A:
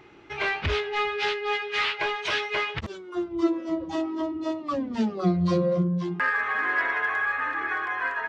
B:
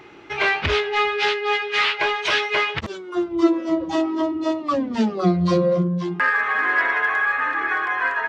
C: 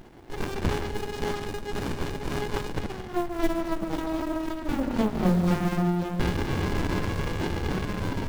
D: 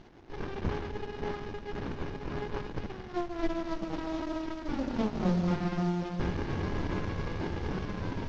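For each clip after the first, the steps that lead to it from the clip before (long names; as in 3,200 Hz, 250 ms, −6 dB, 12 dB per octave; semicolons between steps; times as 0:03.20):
low-shelf EQ 140 Hz −7.5 dB; in parallel at +0.5 dB: speech leveller within 4 dB 2 s
log-companded quantiser 6 bits; on a send: echo machine with several playback heads 72 ms, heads second and third, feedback 43%, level −11.5 dB; on the sum: windowed peak hold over 65 samples; level −1 dB
variable-slope delta modulation 32 kbit/s; level −5 dB; Opus 48 kbit/s 48,000 Hz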